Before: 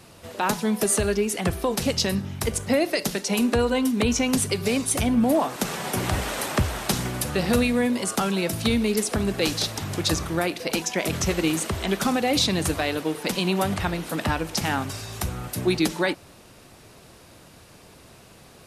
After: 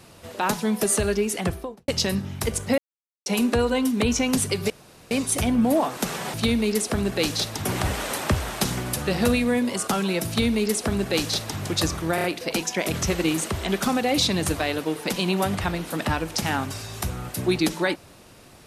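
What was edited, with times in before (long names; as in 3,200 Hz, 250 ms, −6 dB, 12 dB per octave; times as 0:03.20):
0:01.37–0:01.88: fade out and dull
0:02.78–0:03.26: silence
0:04.70: splice in room tone 0.41 s
0:08.56–0:09.87: duplicate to 0:05.93
0:10.43: stutter 0.03 s, 4 plays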